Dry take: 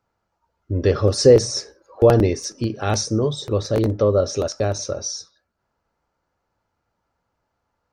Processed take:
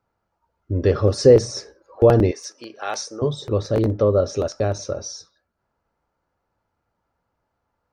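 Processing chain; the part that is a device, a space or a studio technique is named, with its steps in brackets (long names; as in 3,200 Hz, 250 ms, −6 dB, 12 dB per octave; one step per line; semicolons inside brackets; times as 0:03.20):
behind a face mask (high-shelf EQ 3,400 Hz −7.5 dB)
0:02.31–0:03.22: high-pass filter 710 Hz 12 dB per octave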